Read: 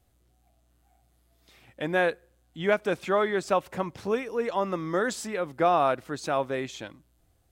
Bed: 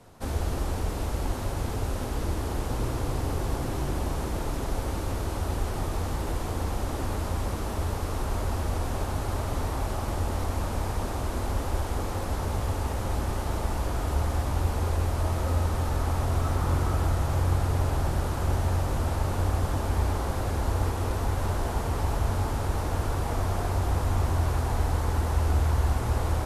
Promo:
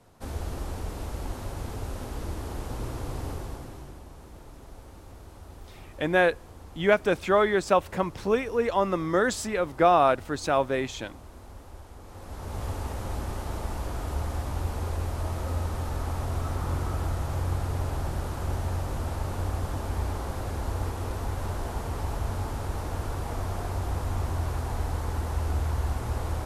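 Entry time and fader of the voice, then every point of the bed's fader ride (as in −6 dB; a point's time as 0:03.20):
4.20 s, +3.0 dB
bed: 0:03.29 −5 dB
0:04.04 −17 dB
0:12.00 −17 dB
0:12.64 −4 dB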